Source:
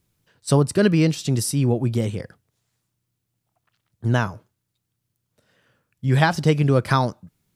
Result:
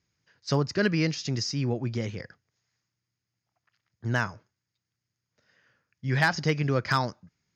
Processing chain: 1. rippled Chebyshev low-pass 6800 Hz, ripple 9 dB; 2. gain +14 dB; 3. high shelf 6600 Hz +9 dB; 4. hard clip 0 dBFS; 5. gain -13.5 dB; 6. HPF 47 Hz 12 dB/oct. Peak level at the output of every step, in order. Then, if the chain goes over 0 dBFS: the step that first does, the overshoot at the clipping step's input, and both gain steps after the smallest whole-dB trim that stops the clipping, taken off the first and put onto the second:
-7.0, +7.0, +7.5, 0.0, -13.5, -12.0 dBFS; step 2, 7.5 dB; step 2 +6 dB, step 5 -5.5 dB

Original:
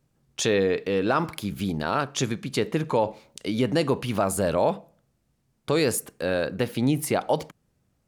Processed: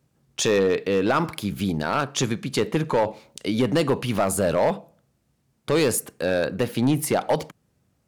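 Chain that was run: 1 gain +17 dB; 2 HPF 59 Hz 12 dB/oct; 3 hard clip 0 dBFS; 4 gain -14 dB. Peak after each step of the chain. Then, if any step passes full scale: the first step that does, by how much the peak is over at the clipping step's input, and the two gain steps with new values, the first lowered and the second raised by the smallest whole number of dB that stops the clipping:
+6.5, +7.5, 0.0, -14.0 dBFS; step 1, 7.5 dB; step 1 +9 dB, step 4 -6 dB

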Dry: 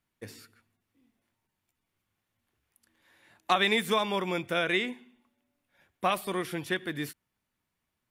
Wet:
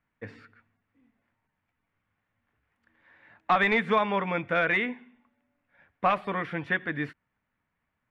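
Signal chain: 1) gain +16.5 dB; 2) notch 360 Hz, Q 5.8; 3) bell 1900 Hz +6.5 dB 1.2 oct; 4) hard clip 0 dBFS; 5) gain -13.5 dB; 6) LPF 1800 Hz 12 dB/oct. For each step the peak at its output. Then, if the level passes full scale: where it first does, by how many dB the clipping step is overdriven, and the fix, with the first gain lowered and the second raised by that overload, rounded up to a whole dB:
+6.0, +5.5, +9.5, 0.0, -13.5, -13.0 dBFS; step 1, 9.5 dB; step 1 +6.5 dB, step 5 -3.5 dB

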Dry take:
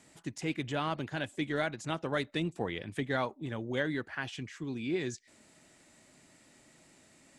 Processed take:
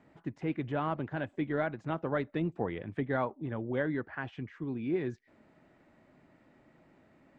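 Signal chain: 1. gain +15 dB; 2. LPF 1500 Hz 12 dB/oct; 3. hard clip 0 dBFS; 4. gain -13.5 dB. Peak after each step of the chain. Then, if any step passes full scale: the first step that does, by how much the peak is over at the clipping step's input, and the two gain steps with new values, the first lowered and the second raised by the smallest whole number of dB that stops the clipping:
-2.5, -4.5, -4.5, -18.0 dBFS; no overload

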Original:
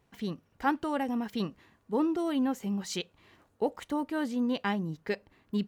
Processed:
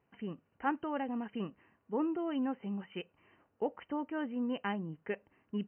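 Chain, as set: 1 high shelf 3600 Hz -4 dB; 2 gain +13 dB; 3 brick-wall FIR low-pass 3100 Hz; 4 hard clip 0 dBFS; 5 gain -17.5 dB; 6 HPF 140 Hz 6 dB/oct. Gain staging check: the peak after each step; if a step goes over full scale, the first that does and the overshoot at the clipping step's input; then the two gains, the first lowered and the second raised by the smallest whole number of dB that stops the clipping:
-15.0, -2.0, -2.0, -2.0, -19.5, -20.5 dBFS; no overload

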